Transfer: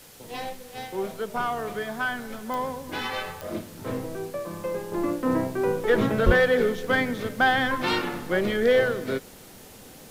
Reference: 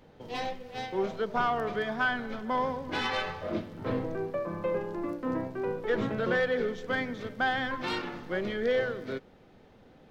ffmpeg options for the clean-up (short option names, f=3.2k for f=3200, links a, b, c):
-filter_complex "[0:a]adeclick=t=4,asplit=3[a][b][c];[a]afade=t=out:st=6.25:d=0.02[d];[b]highpass=f=140:w=0.5412,highpass=f=140:w=1.3066,afade=t=in:st=6.25:d=0.02,afade=t=out:st=6.37:d=0.02[e];[c]afade=t=in:st=6.37:d=0.02[f];[d][e][f]amix=inputs=3:normalize=0,afwtdn=0.0035,asetnsamples=n=441:p=0,asendcmd='4.92 volume volume -7.5dB',volume=0dB"